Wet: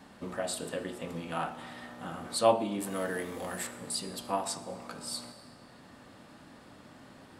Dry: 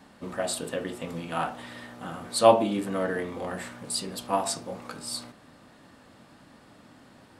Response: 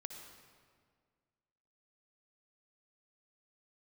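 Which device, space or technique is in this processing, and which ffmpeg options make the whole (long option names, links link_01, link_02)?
ducked reverb: -filter_complex "[0:a]asettb=1/sr,asplit=3[link_01][link_02][link_03];[link_01]atrim=end=2.804[link_04];[link_02]atrim=start=2.8:end=3.67,asetpts=PTS-STARTPTS,afade=type=in:duration=0.004:curve=qsin,afade=type=out:start_time=0.866:duration=0.004:curve=qsin,aemphasis=mode=production:type=75kf[link_05];[link_03]atrim=start=3.666[link_06];[link_04][link_05]acrossfade=duration=0.004:curve1=hsin:curve2=qsin[link_07];[link_07][link_06]acrossfade=duration=0.004:curve1=qsin:curve2=hsin,asplit=3[link_08][link_09][link_10];[1:a]atrim=start_sample=2205[link_11];[link_09][link_11]afir=irnorm=-1:irlink=0[link_12];[link_10]apad=whole_len=325920[link_13];[link_12][link_13]sidechaincompress=threshold=-38dB:ratio=3:attack=16:release=1060,volume=8.5dB[link_14];[link_08][link_14]amix=inputs=2:normalize=0,volume=-8dB"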